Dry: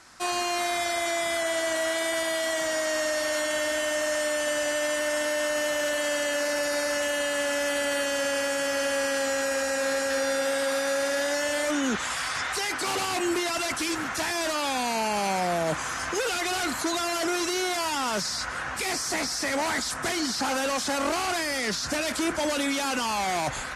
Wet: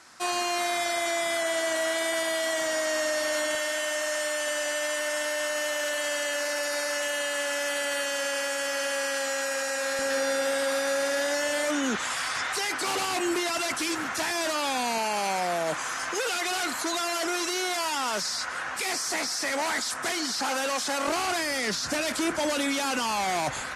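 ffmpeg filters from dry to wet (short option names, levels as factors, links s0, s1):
-af "asetnsamples=n=441:p=0,asendcmd='3.55 highpass f 670;9.99 highpass f 170;14.98 highpass f 400;21.08 highpass f 110',highpass=f=180:p=1"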